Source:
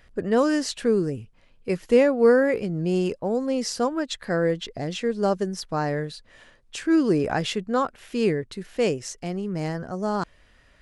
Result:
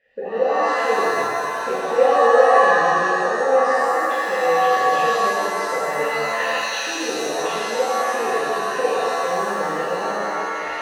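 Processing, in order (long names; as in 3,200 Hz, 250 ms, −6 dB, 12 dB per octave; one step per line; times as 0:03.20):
camcorder AGC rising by 63 dB per second
formant filter e
reverb with rising layers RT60 2.2 s, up +7 semitones, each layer −2 dB, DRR −9 dB
level −2 dB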